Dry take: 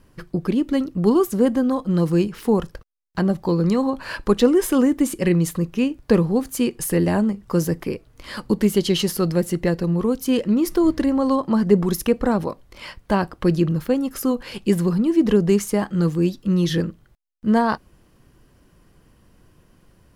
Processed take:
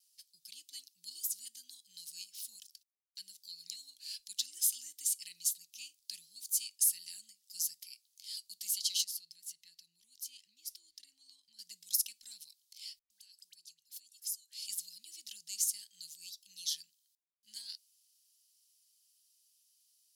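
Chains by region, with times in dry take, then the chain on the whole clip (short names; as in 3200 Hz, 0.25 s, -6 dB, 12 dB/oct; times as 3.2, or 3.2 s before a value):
9.04–11.59 high shelf 3400 Hz -10 dB + compressor 2.5:1, threshold -24 dBFS
12.99–14.67 dynamic EQ 7700 Hz, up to +6 dB, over -48 dBFS, Q 0.91 + compressor 8:1, threshold -32 dBFS + dispersion highs, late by 0.111 s, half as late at 930 Hz
whole clip: gate with hold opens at -48 dBFS; inverse Chebyshev high-pass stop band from 1300 Hz, stop band 60 dB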